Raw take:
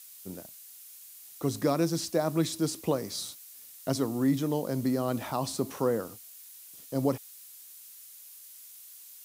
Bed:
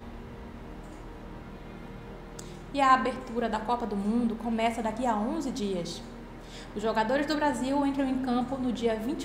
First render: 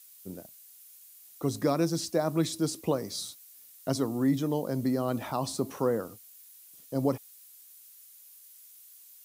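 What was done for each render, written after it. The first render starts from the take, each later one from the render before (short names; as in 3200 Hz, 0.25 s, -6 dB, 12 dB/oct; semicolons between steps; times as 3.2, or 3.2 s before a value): denoiser 6 dB, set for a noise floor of -50 dBFS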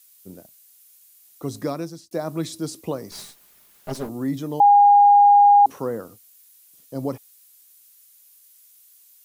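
1.67–2.11 fade out linear; 3.11–4.09 minimum comb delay 4.9 ms; 4.6–5.66 bleep 815 Hz -9 dBFS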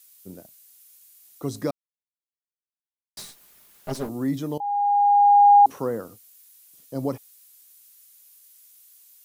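1.71–3.17 mute; 4.58–5.56 fade in, from -19.5 dB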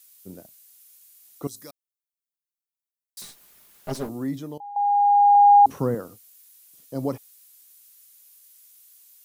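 1.47–3.22 pre-emphasis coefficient 0.9; 3.97–4.76 fade out linear, to -13.5 dB; 5.35–5.95 tone controls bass +11 dB, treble 0 dB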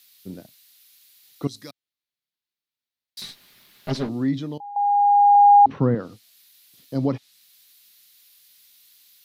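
treble ducked by the level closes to 2500 Hz, closed at -18.5 dBFS; graphic EQ 125/250/2000/4000/8000 Hz +6/+5/+5/+11/-7 dB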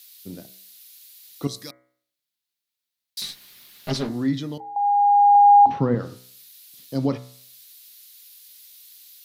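high shelf 3300 Hz +8 dB; de-hum 63.17 Hz, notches 36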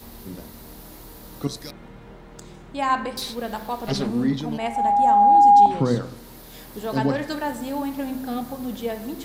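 add bed -0.5 dB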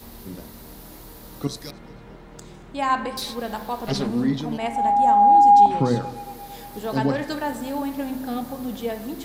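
tape echo 0.227 s, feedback 76%, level -19 dB, low-pass 3300 Hz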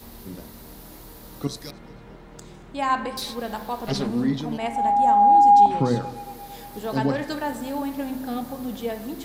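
gain -1 dB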